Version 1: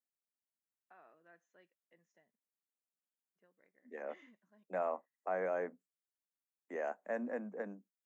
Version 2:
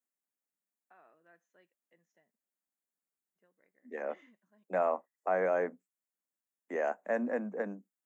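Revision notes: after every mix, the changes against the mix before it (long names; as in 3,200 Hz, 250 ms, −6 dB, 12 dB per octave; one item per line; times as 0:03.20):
second voice +6.5 dB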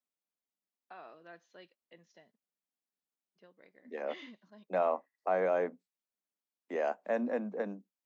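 first voice +12.0 dB
master: add drawn EQ curve 1,100 Hz 0 dB, 1,800 Hz −4 dB, 4,500 Hz +14 dB, 7,000 Hz −6 dB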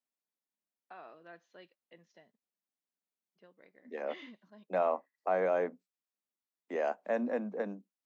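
first voice: add bass and treble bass 0 dB, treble −5 dB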